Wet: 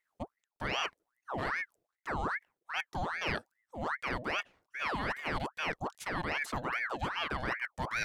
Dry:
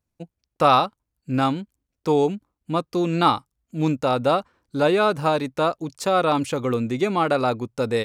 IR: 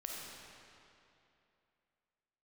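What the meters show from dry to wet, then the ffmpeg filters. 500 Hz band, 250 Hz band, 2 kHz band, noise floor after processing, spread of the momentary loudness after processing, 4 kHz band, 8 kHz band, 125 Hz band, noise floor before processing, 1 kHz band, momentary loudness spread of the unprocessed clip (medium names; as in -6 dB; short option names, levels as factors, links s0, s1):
-20.0 dB, -19.0 dB, -2.0 dB, under -85 dBFS, 9 LU, -9.0 dB, -9.5 dB, -15.0 dB, -82 dBFS, -14.5 dB, 9 LU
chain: -af "areverse,acompressor=threshold=0.0316:ratio=6,areverse,aeval=exprs='val(0)*sin(2*PI*1200*n/s+1200*0.7/2.5*sin(2*PI*2.5*n/s))':c=same"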